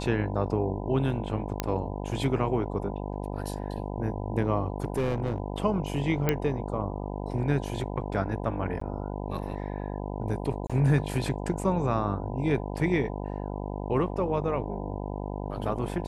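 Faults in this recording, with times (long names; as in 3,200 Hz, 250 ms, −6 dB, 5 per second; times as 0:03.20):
mains buzz 50 Hz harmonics 20 −34 dBFS
0:01.60: click −11 dBFS
0:04.82–0:05.40: clipping −22.5 dBFS
0:06.29: click −10 dBFS
0:08.80–0:08.81: drop-out 14 ms
0:10.67–0:10.70: drop-out 26 ms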